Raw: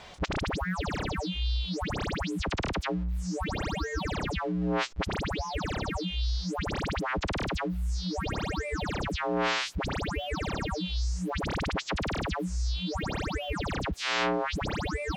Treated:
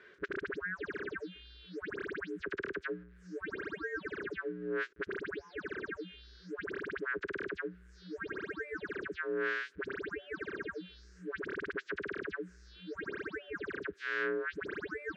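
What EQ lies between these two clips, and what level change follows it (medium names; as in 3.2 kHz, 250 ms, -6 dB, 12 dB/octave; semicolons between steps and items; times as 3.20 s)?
two resonant band-passes 790 Hz, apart 2 oct; +3.0 dB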